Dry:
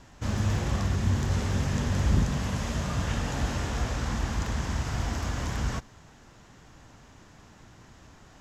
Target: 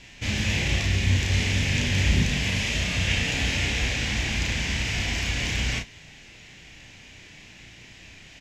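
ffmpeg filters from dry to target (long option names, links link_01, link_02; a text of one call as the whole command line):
ffmpeg -i in.wav -filter_complex "[0:a]lowpass=frequency=3700:poles=1,highshelf=frequency=1700:width_type=q:width=3:gain=11,asplit=2[link_01][link_02];[link_02]aecho=0:1:33|53:0.631|0.188[link_03];[link_01][link_03]amix=inputs=2:normalize=0" out.wav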